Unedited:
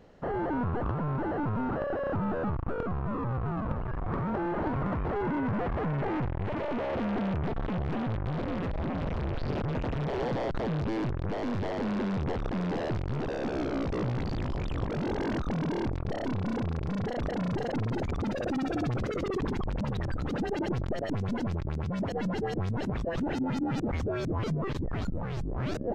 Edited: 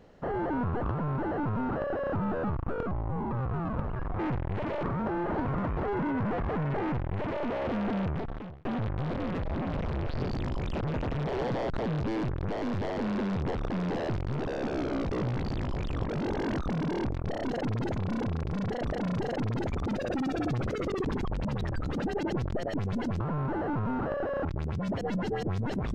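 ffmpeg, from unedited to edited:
-filter_complex "[0:a]asplit=12[s0][s1][s2][s3][s4][s5][s6][s7][s8][s9][s10][s11];[s0]atrim=end=2.914[s12];[s1]atrim=start=2.91:end=3.23,asetpts=PTS-STARTPTS,asetrate=35280,aresample=44100[s13];[s2]atrim=start=3.226:end=4.112[s14];[s3]atrim=start=6.088:end=6.732[s15];[s4]atrim=start=4.108:end=7.93,asetpts=PTS-STARTPTS,afade=t=out:st=3.232:d=0.59[s16];[s5]atrim=start=7.93:end=9.562,asetpts=PTS-STARTPTS,afade=t=in:d=0.004:c=hsin[s17];[s6]atrim=start=14.258:end=14.732[s18];[s7]atrim=start=9.558:end=16.322[s19];[s8]atrim=start=17.618:end=18.072[s20];[s9]atrim=start=16.318:end=21.562[s21];[s10]atrim=start=0.898:end=2.152[s22];[s11]atrim=start=21.558[s23];[s12][s13]acrossfade=d=0.004:c1=hsin:c2=hsin[s24];[s24][s14]acrossfade=d=0.004:c1=hsin:c2=hsin[s25];[s25][s15]acrossfade=d=0.004:c1=hsin:c2=hsin[s26];[s16][s17]concat=n=2:v=0:a=1[s27];[s26][s27]acrossfade=d=0.004:c1=hsin:c2=hsin[s28];[s28][s18]acrossfade=d=0.004:c1=hsin:c2=hsin[s29];[s29][s19]acrossfade=d=0.004:c1=hsin:c2=hsin[s30];[s30][s20]acrossfade=d=0.004:c1=hsin:c2=hsin[s31];[s31][s21]acrossfade=d=0.004:c1=hsin:c2=hsin[s32];[s32][s22]acrossfade=d=0.004:c1=hsin:c2=hsin[s33];[s33][s23]acrossfade=d=0.004:c1=hsin:c2=hsin"

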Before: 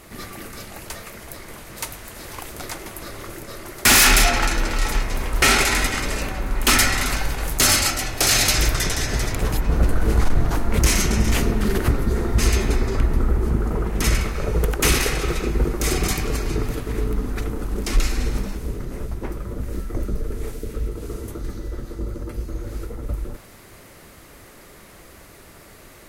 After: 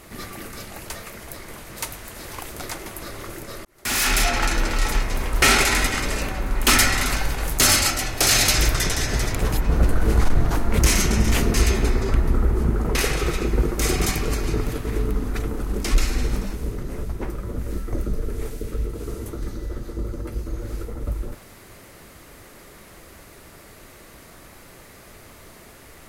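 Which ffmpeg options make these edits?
-filter_complex "[0:a]asplit=4[s0][s1][s2][s3];[s0]atrim=end=3.65,asetpts=PTS-STARTPTS,afade=t=out:st=3.646:d=0.004:c=hsin[s4];[s1]atrim=start=3.65:end=11.542,asetpts=PTS-STARTPTS,afade=t=in:d=0.92[s5];[s2]atrim=start=12.398:end=13.812[s6];[s3]atrim=start=14.968[s7];[s4][s5]concat=n=2:v=0:a=1[s8];[s8][s6]acrossfade=d=0.004:c1=hsin:c2=hsin[s9];[s9][s7]acrossfade=d=0.004:c1=hsin:c2=hsin"

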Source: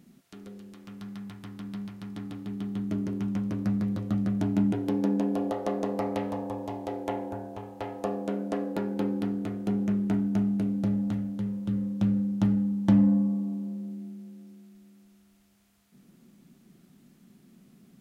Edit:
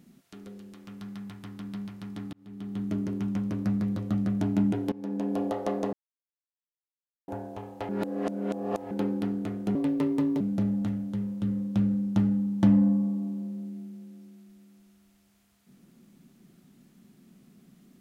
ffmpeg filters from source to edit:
-filter_complex "[0:a]asplit=9[s0][s1][s2][s3][s4][s5][s6][s7][s8];[s0]atrim=end=2.33,asetpts=PTS-STARTPTS,afade=t=out:st=2.326:d=0.004:c=hsin[s9];[s1]atrim=start=2.33:end=4.92,asetpts=PTS-STARTPTS,afade=t=in:d=0.5,afade=t=out:st=2.586:d=0.004:c=hsin:silence=0.0891251[s10];[s2]atrim=start=4.92:end=5.93,asetpts=PTS-STARTPTS,afade=t=in:d=0.47:silence=0.0891251,afade=t=out:st=1.006:d=0.004:c=hsin[s11];[s3]atrim=start=5.93:end=7.28,asetpts=PTS-STARTPTS,volume=0[s12];[s4]atrim=start=7.28:end=7.892,asetpts=PTS-STARTPTS,afade=t=in:d=0.004:c=hsin[s13];[s5]atrim=start=7.888:end=8.912,asetpts=PTS-STARTPTS,areverse[s14];[s6]atrim=start=8.908:end=9.754[s15];[s7]atrim=start=9.75:end=10.66,asetpts=PTS-STARTPTS,asetrate=61299,aresample=44100,atrim=end_sample=28871,asetpts=PTS-STARTPTS[s16];[s8]atrim=start=10.656[s17];[s9][s10][s11][s12][s13]concat=n=5:v=0:a=1[s18];[s18][s14]acrossfade=d=0.004:c1=hsin:c2=hsin[s19];[s19][s15]acrossfade=d=0.004:c1=hsin:c2=hsin[s20];[s20][s16]acrossfade=d=0.004:c1=hsin:c2=hsin[s21];[s21][s17]acrossfade=d=0.004:c1=hsin:c2=hsin"

